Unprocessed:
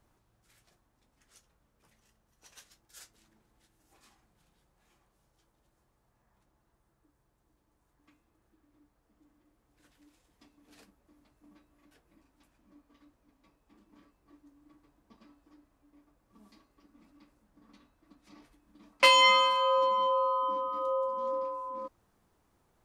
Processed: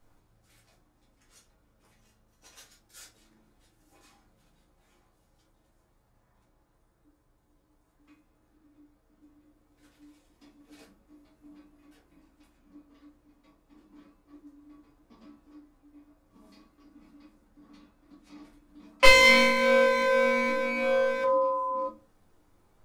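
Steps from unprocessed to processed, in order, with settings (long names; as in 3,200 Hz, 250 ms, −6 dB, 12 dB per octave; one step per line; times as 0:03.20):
0:19.05–0:21.24: lower of the sound and its delayed copy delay 0.41 ms
rectangular room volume 130 cubic metres, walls furnished, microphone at 2 metres
level −1 dB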